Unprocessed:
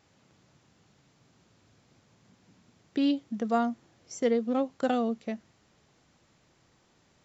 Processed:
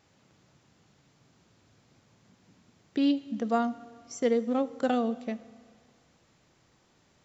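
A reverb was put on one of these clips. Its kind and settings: Schroeder reverb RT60 1.9 s, combs from 25 ms, DRR 16.5 dB

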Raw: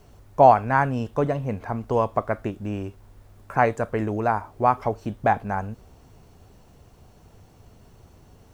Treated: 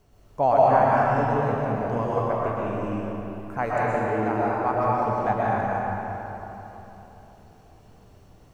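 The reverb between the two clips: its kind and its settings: algorithmic reverb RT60 3.5 s, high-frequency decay 0.7×, pre-delay 85 ms, DRR -7.5 dB; trim -8.5 dB

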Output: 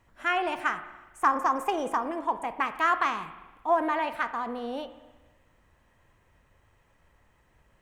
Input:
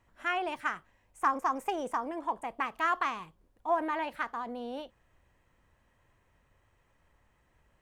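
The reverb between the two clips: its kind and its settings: spring tank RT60 1.2 s, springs 39/54 ms, chirp 80 ms, DRR 11 dB; trim +4.5 dB

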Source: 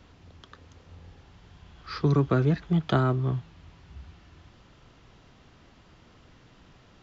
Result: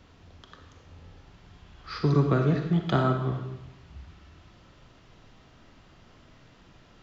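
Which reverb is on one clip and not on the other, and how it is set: algorithmic reverb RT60 0.96 s, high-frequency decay 0.9×, pre-delay 5 ms, DRR 3.5 dB; trim -1 dB

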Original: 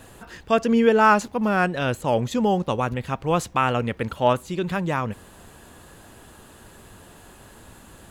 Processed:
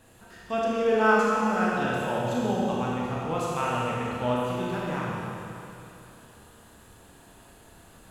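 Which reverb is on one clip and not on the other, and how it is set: Schroeder reverb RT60 2.8 s, combs from 25 ms, DRR -5.5 dB; trim -11.5 dB

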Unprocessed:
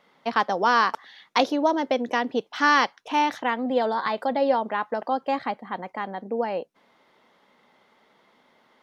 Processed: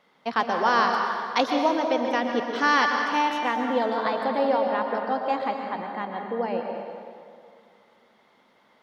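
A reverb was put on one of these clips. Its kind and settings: plate-style reverb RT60 2.2 s, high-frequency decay 0.7×, pre-delay 105 ms, DRR 2.5 dB; trim -2 dB

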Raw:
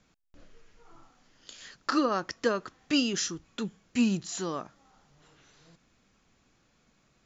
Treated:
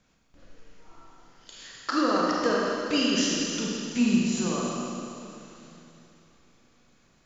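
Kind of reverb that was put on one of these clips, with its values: Schroeder reverb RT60 2.9 s, combs from 33 ms, DRR -4 dB; trim -1 dB

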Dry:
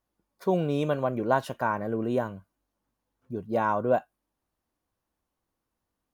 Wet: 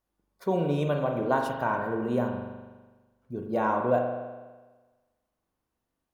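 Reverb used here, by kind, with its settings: spring tank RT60 1.3 s, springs 41 ms, chirp 55 ms, DRR 2.5 dB; trim -2 dB

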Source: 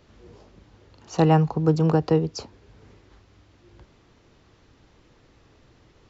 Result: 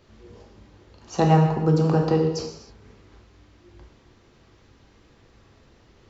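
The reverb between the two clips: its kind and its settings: gated-style reverb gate 340 ms falling, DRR 1 dB; trim -1 dB

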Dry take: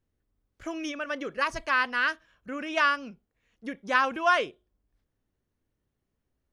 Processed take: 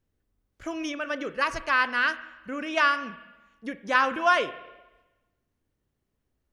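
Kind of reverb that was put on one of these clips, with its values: spring tank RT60 1.1 s, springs 34/41/45 ms, chirp 60 ms, DRR 13 dB; trim +1.5 dB

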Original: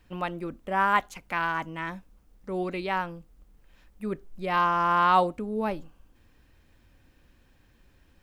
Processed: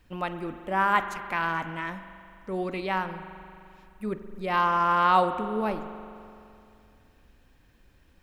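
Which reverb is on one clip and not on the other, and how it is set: spring tank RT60 2.6 s, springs 42 ms, chirp 25 ms, DRR 9.5 dB

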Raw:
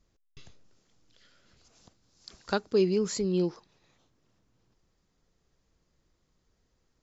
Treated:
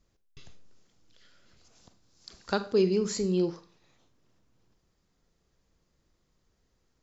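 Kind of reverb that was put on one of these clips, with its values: Schroeder reverb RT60 0.38 s, combs from 32 ms, DRR 11 dB

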